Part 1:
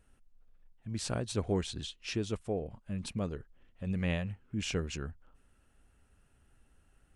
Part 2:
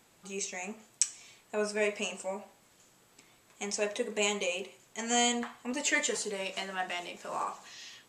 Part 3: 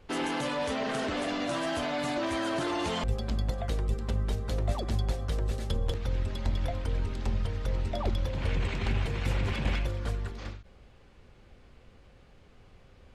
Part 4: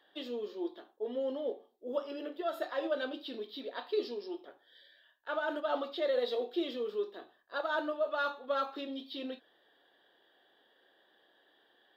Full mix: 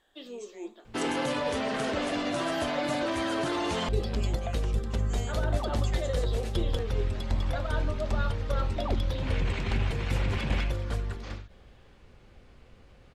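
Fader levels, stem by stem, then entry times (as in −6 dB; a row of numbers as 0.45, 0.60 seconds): −15.0, −16.5, +1.0, −3.0 decibels; 0.00, 0.00, 0.85, 0.00 seconds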